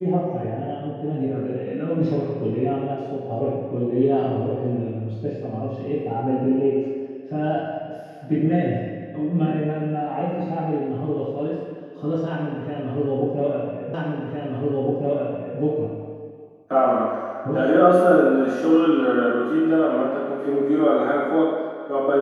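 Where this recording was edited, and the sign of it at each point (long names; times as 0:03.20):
0:13.94: the same again, the last 1.66 s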